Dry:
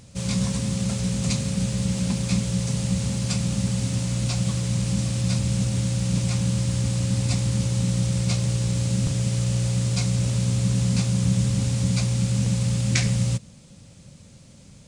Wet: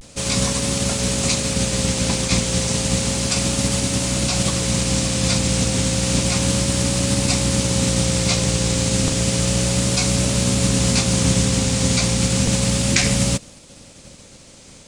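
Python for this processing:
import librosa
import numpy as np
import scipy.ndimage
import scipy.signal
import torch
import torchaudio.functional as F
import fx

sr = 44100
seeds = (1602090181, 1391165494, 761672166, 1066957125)

y = fx.spec_clip(x, sr, under_db=15)
y = fx.vibrato(y, sr, rate_hz=0.32, depth_cents=37.0)
y = y * 10.0 ** (4.0 / 20.0)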